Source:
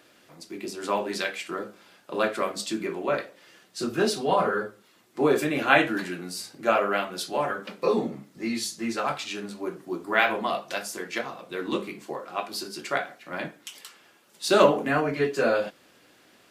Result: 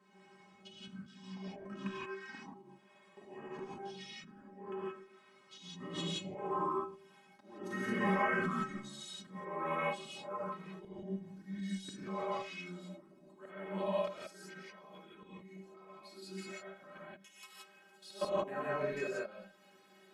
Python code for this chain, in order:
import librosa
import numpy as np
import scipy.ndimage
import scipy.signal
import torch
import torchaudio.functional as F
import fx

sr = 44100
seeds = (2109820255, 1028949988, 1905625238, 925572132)

y = fx.speed_glide(x, sr, from_pct=63, to_pct=101)
y = fx.highpass(y, sr, hz=140.0, slope=6)
y = fx.high_shelf(y, sr, hz=3400.0, db=-9.5)
y = fx.level_steps(y, sr, step_db=16)
y = fx.vibrato(y, sr, rate_hz=2.6, depth_cents=6.9)
y = fx.stiff_resonator(y, sr, f0_hz=190.0, decay_s=0.21, stiffness=0.008)
y = fx.auto_swell(y, sr, attack_ms=456.0)
y = fx.rev_gated(y, sr, seeds[0], gate_ms=200, shape='rising', drr_db=-6.5)
y = F.gain(torch.from_numpy(y), 5.0).numpy()